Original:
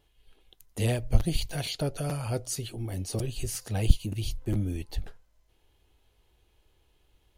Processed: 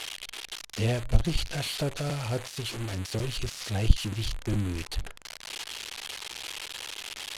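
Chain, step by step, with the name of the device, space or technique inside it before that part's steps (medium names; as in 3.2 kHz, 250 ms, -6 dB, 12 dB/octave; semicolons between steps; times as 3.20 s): budget class-D amplifier (dead-time distortion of 0.087 ms; zero-crossing glitches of -14.5 dBFS); low-pass 5.6 kHz 12 dB/octave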